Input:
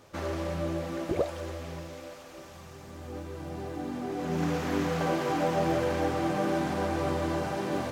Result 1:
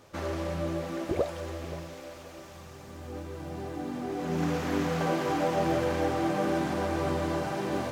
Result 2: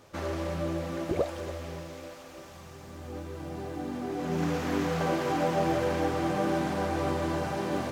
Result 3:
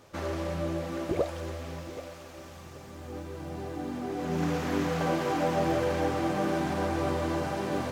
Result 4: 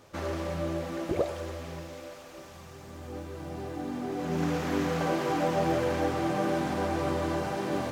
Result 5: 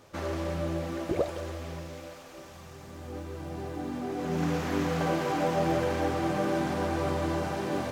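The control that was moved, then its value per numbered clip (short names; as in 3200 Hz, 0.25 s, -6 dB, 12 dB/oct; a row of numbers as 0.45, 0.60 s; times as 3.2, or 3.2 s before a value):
lo-fi delay, time: 0.528, 0.277, 0.777, 0.105, 0.17 s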